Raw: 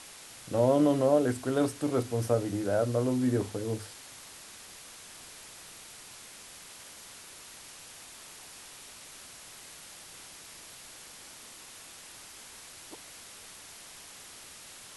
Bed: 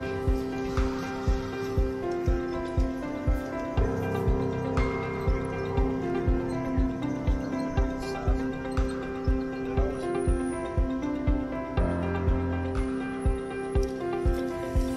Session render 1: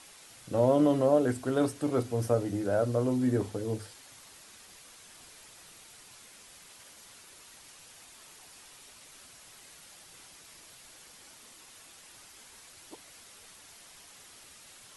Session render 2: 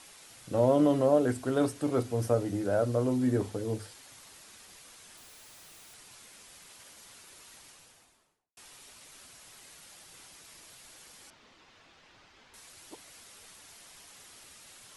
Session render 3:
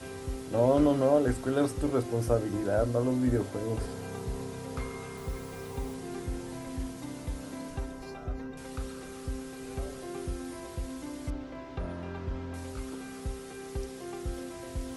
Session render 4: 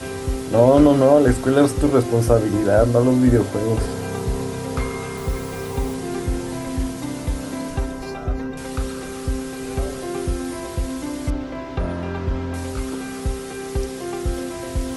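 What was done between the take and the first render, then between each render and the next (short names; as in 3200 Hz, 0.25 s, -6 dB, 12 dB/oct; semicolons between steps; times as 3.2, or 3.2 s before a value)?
denoiser 6 dB, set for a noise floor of -49 dBFS
5.17–5.94 infinite clipping; 7.56–8.57 studio fade out; 11.3–12.54 air absorption 200 m
add bed -10 dB
gain +12 dB; limiter -3 dBFS, peak gain reduction 2.5 dB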